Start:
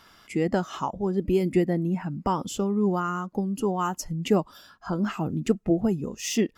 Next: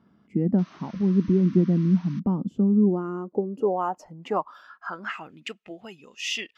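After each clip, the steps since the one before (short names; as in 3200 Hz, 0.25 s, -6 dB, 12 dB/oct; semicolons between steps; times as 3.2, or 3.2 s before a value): painted sound noise, 0.58–2.2, 940–6400 Hz -32 dBFS; band-pass sweep 200 Hz -> 2800 Hz, 2.57–5.54; gain +8 dB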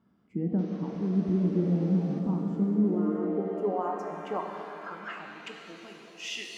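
shimmer reverb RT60 3 s, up +7 st, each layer -8 dB, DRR 2 dB; gain -8 dB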